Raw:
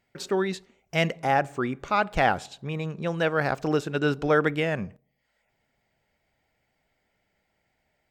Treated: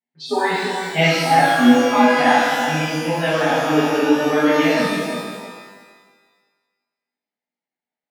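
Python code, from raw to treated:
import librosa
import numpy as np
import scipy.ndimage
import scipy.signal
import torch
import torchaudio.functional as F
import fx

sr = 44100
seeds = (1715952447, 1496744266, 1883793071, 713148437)

y = fx.noise_reduce_blind(x, sr, reduce_db=29)
y = fx.rider(y, sr, range_db=5, speed_s=0.5)
y = fx.cabinet(y, sr, low_hz=190.0, low_slope=24, high_hz=4300.0, hz=(250.0, 520.0, 920.0, 1400.0), db=(7, -5, 6, -8))
y = fx.echo_filtered(y, sr, ms=332, feedback_pct=16, hz=910.0, wet_db=-6)
y = fx.rev_shimmer(y, sr, seeds[0], rt60_s=1.4, semitones=12, shimmer_db=-8, drr_db=-11.0)
y = y * 10.0 ** (-2.5 / 20.0)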